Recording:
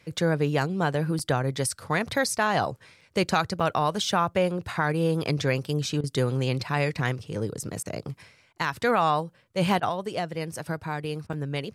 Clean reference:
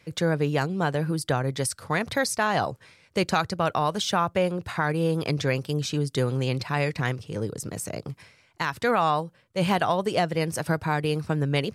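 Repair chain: interpolate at 1.19/3.01/3.6/11.33, 4.1 ms; interpolate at 6.01/7.83/8.53/9.8/11.27, 26 ms; gain correction +6 dB, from 9.89

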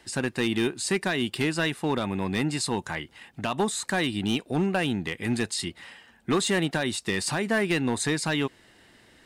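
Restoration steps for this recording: clip repair -18 dBFS

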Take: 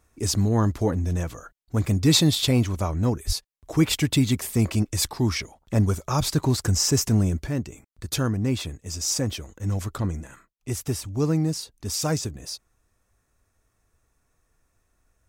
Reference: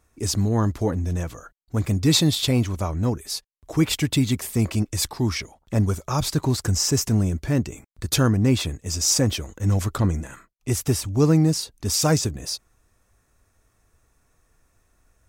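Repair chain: 3.26–3.38 HPF 140 Hz 24 dB/oct; gain 0 dB, from 7.47 s +5.5 dB

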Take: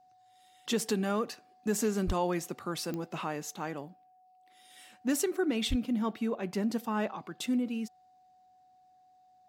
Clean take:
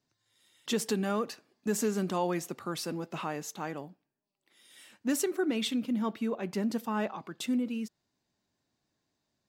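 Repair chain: de-click; notch 740 Hz, Q 30; 2.06–2.18 HPF 140 Hz 24 dB/oct; 5.69–5.81 HPF 140 Hz 24 dB/oct

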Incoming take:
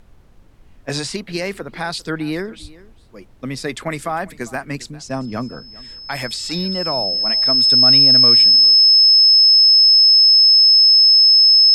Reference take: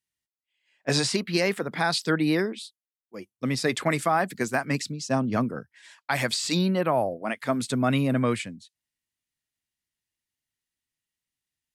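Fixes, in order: notch 5200 Hz, Q 30; 2.61–2.73 HPF 140 Hz 24 dB/oct; expander -35 dBFS, range -21 dB; inverse comb 0.399 s -21 dB

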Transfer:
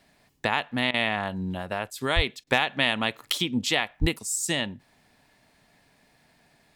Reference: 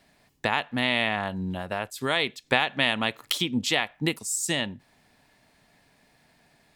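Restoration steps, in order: clip repair -8 dBFS; 2.15–2.27 HPF 140 Hz 24 dB/oct; 4–4.12 HPF 140 Hz 24 dB/oct; interpolate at 0.91/2.44, 28 ms

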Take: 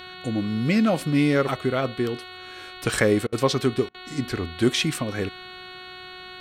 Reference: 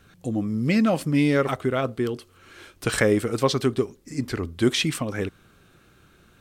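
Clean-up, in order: de-hum 367.5 Hz, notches 12; notch 1400 Hz, Q 30; interpolate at 3.27/3.89, 53 ms

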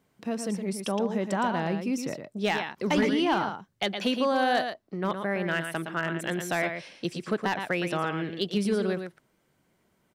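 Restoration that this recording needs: clip repair -17 dBFS; inverse comb 0.115 s -7.5 dB

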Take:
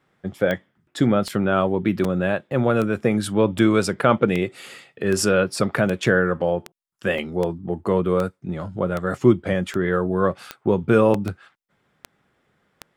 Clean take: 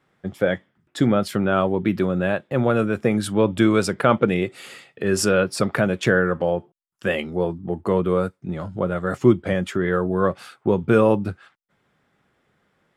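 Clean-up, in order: de-click; interpolate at 1.29/2.04/7.18/11.14, 3.7 ms

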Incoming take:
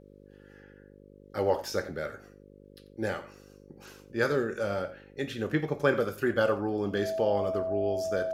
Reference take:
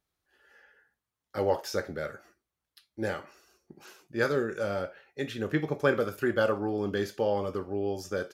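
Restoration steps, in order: de-hum 50 Hz, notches 11; notch 650 Hz, Q 30; inverse comb 88 ms -16 dB

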